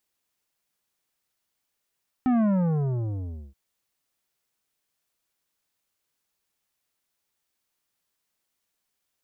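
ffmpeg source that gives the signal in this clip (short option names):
-f lavfi -i "aevalsrc='0.1*clip((1.28-t)/1.13,0,1)*tanh(3.55*sin(2*PI*260*1.28/log(65/260)*(exp(log(65/260)*t/1.28)-1)))/tanh(3.55)':d=1.28:s=44100"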